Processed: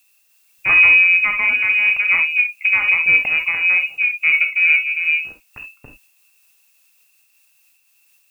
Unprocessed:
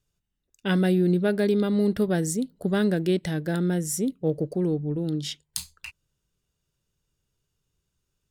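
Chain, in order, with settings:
adaptive Wiener filter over 41 samples
voice inversion scrambler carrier 2,700 Hz
reverb whose tail is shaped and stops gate 90 ms flat, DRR 4.5 dB
in parallel at +2 dB: brickwall limiter −17 dBFS, peak gain reduction 7.5 dB
on the sum: background noise blue −61 dBFS
amplitude modulation by smooth noise, depth 55%
level +5 dB

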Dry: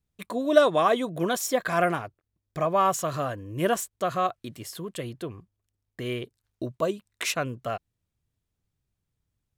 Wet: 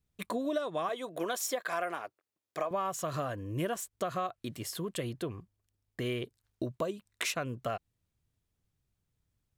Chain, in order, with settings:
0:00.89–0:02.71: high-pass filter 400 Hz 12 dB per octave
downward compressor 8 to 1, threshold −30 dBFS, peak gain reduction 18.5 dB

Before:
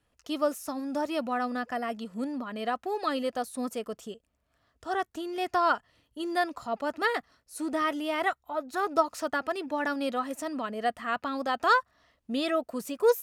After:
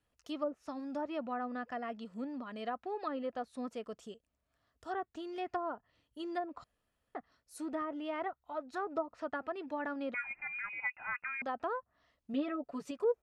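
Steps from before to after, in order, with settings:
treble cut that deepens with the level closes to 670 Hz, closed at −22.5 dBFS
0:06.64–0:07.15: fill with room tone
0:10.14–0:11.42: voice inversion scrambler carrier 2,700 Hz
0:12.33–0:12.91: comb filter 7 ms, depth 85%
level −7.5 dB

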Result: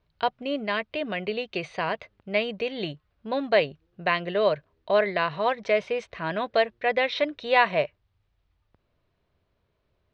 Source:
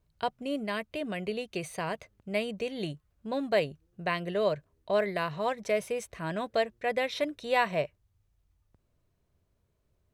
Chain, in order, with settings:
low-pass filter 4,300 Hz 24 dB per octave
low-shelf EQ 350 Hz −8.5 dB
level +7.5 dB

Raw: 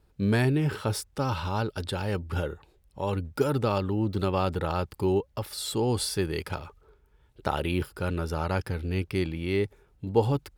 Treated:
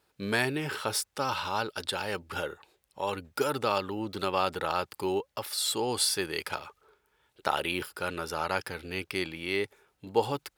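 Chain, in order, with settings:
high-pass filter 990 Hz 6 dB per octave
level +4.5 dB

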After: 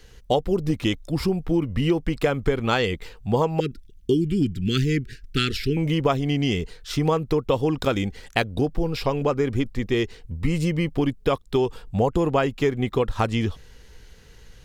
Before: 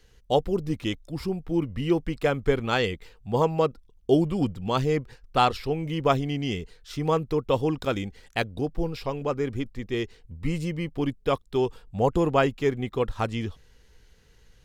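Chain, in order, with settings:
0:03.60–0:05.77: inverse Chebyshev band-stop filter 550–1,100 Hz, stop band 40 dB
downward compressor 5 to 1, threshold −27 dBFS, peak gain reduction 10.5 dB
level +9 dB

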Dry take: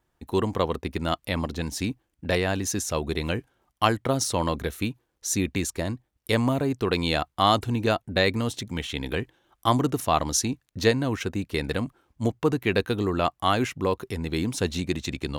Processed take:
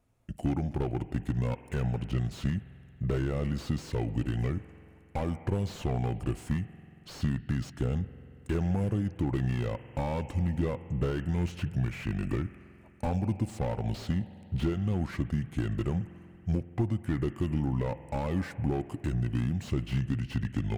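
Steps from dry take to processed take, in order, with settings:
graphic EQ with 15 bands 160 Hz +10 dB, 1,600 Hz −5 dB, 6,300 Hz −6 dB
downward compressor 8 to 1, threshold −25 dBFS, peak gain reduction 11.5 dB
spring reverb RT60 2.2 s, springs 34 ms, chirp 20 ms, DRR 16.5 dB
wrong playback speed 45 rpm record played at 33 rpm
slew-rate limiting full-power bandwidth 23 Hz

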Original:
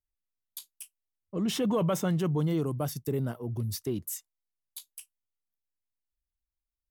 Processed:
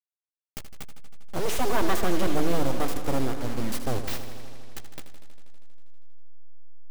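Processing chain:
hold until the input has moved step −37 dBFS
full-wave rectification
feedback echo with a swinging delay time 80 ms, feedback 80%, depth 78 cents, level −11 dB
level +6 dB

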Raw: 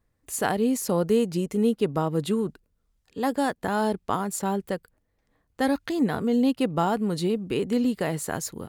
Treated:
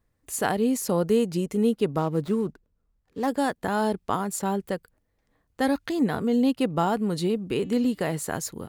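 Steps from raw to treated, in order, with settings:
0:01.98–0:03.28: running median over 15 samples
0:07.54–0:08.12: hum removal 291.1 Hz, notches 26

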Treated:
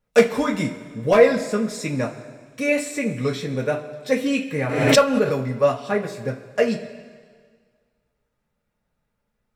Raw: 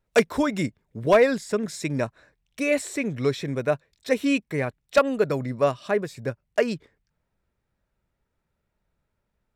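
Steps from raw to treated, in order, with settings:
coupled-rooms reverb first 0.21 s, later 1.8 s, from −18 dB, DRR −2.5 dB
0:04.63–0:05.44: background raised ahead of every attack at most 52 dB per second
level −2 dB

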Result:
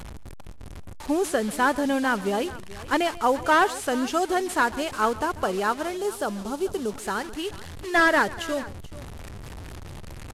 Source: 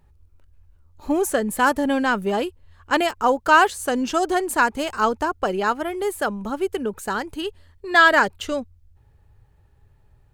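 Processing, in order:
linear delta modulator 64 kbit/s, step −29.5 dBFS
0:05.97–0:06.92: parametric band 2,000 Hz −10 dB 0.84 octaves
multi-tap delay 139/434 ms −19/−18 dB
level −3 dB

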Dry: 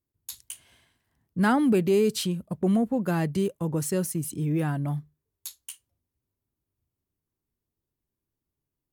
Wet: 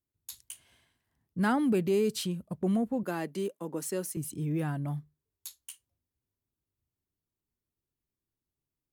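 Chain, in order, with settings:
0:03.03–0:04.17: high-pass filter 220 Hz 24 dB per octave
level −5 dB

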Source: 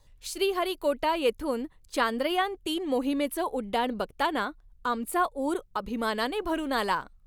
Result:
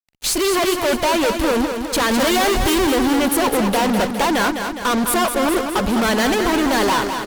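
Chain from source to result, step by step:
0:02.11–0:02.87: power curve on the samples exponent 0.5
fuzz pedal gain 42 dB, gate −49 dBFS
on a send: repeating echo 206 ms, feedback 59%, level −7 dB
on the sum: level −3.5 dB

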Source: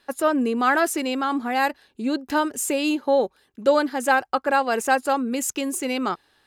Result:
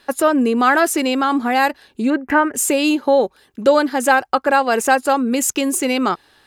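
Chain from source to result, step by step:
0:02.10–0:02.55: high shelf with overshoot 2,900 Hz −12.5 dB, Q 3
in parallel at +1 dB: downward compressor, threshold −26 dBFS, peak gain reduction 12.5 dB
on the sum: level +2.5 dB

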